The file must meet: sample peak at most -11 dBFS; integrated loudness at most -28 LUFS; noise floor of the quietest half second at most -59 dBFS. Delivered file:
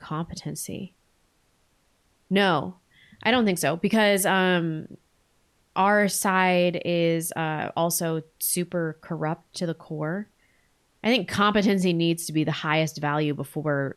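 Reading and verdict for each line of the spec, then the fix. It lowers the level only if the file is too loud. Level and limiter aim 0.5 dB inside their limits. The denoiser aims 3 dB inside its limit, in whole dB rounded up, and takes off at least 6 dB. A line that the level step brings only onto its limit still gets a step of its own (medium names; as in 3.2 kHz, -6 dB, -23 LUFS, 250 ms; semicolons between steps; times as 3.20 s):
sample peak -7.5 dBFS: fail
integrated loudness -24.5 LUFS: fail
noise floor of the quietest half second -66 dBFS: pass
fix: trim -4 dB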